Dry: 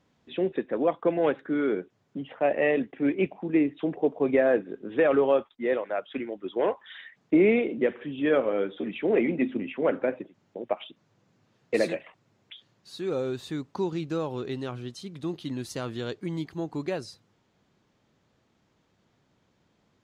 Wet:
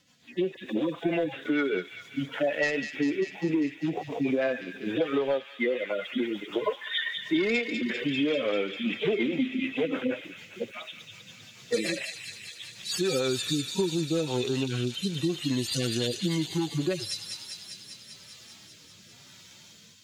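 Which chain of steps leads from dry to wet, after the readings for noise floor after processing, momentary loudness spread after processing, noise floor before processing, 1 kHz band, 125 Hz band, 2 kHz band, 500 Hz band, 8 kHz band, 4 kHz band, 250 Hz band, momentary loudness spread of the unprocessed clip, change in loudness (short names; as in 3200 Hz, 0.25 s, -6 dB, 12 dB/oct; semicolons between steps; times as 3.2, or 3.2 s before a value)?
-53 dBFS, 15 LU, -70 dBFS, -4.5 dB, +3.5 dB, +2.5 dB, -4.0 dB, n/a, +12.0 dB, -0.5 dB, 13 LU, -1.5 dB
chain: median-filter separation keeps harmonic; high shelf 2400 Hz +9.5 dB; AGC gain up to 11 dB; tilt shelf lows -6 dB, about 1400 Hz; sine folder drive 4 dB, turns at -4 dBFS; rotary speaker horn 6.7 Hz, later 1 Hz, at 13.42; compressor 6:1, threshold -25 dBFS, peak gain reduction 17 dB; thin delay 0.198 s, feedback 75%, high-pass 2600 Hz, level -4 dB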